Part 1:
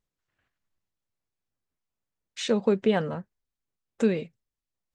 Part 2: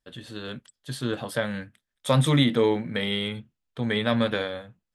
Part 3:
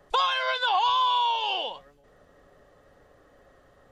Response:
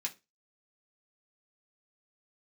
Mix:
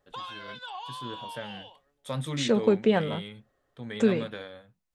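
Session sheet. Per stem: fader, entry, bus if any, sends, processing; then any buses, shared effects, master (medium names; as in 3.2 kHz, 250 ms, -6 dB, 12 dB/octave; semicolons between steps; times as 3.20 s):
+0.5 dB, 0.00 s, no send, none
-12.0 dB, 0.00 s, no send, none
-17.0 dB, 0.00 s, send -10.5 dB, none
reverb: on, RT60 0.25 s, pre-delay 3 ms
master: none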